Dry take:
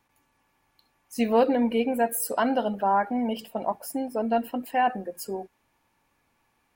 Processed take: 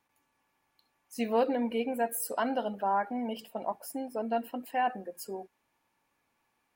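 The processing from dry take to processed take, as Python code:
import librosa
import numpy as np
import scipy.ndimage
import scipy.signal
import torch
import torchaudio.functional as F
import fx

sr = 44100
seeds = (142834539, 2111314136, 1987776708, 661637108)

y = fx.low_shelf(x, sr, hz=120.0, db=-10.0)
y = y * 10.0 ** (-5.5 / 20.0)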